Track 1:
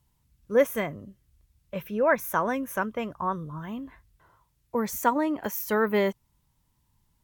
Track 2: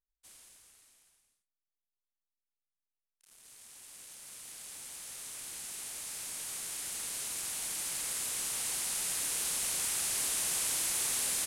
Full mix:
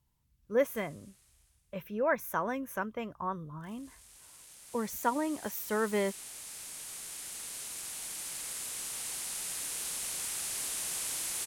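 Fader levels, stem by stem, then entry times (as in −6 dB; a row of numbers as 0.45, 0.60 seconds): −6.5, −3.5 decibels; 0.00, 0.40 seconds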